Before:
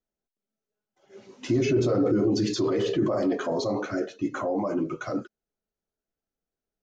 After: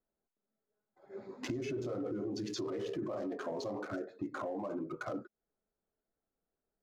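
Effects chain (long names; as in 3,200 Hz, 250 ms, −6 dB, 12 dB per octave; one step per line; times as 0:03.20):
adaptive Wiener filter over 15 samples
low-shelf EQ 280 Hz −5 dB
downward compressor 6 to 1, threshold −41 dBFS, peak gain reduction 18.5 dB
level +4 dB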